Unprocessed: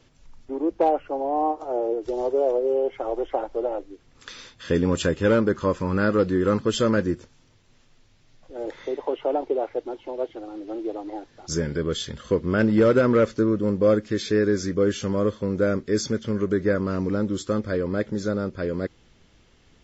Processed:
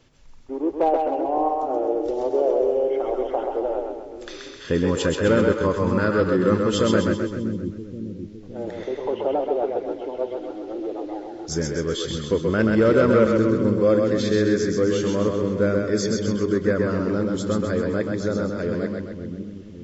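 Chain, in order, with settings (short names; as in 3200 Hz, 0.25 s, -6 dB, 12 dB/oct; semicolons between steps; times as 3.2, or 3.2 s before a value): split-band echo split 340 Hz, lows 0.561 s, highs 0.13 s, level -3.5 dB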